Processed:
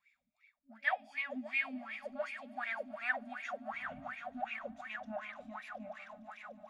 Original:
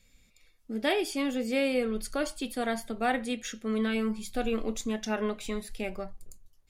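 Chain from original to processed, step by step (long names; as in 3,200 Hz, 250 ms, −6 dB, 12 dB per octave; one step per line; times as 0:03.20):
0:03.72–0:04.33: linear-prediction vocoder at 8 kHz whisper
brick-wall band-stop 270–570 Hz
on a send: echo that builds up and dies away 147 ms, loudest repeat 5, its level −14.5 dB
on the sum: LFO wah 2.7 Hz 330–2,400 Hz, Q 11
level +8 dB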